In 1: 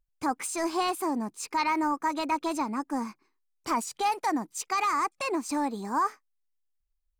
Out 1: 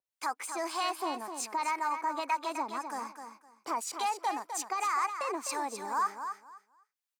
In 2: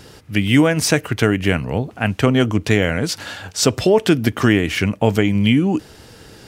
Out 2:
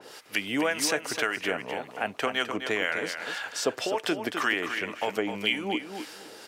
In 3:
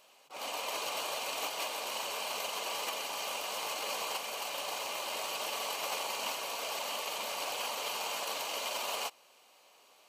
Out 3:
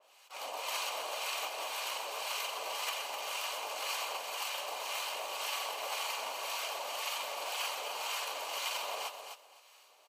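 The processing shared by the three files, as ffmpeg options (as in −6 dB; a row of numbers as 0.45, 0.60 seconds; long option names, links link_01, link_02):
-filter_complex "[0:a]highpass=540,acompressor=threshold=-34dB:ratio=1.5,acrossover=split=910[link_01][link_02];[link_01]aeval=exprs='val(0)*(1-0.7/2+0.7/2*cos(2*PI*1.9*n/s))':channel_layout=same[link_03];[link_02]aeval=exprs='val(0)*(1-0.7/2-0.7/2*cos(2*PI*1.9*n/s))':channel_layout=same[link_04];[link_03][link_04]amix=inputs=2:normalize=0,asplit=2[link_05][link_06];[link_06]aecho=0:1:256|512|768:0.398|0.0796|0.0159[link_07];[link_05][link_07]amix=inputs=2:normalize=0,adynamicequalizer=threshold=0.00562:dfrequency=3400:dqfactor=0.7:tfrequency=3400:tqfactor=0.7:attack=5:release=100:ratio=0.375:range=3:mode=cutabove:tftype=highshelf,volume=3.5dB"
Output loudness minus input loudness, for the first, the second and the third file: −4.0, −11.5, −1.0 LU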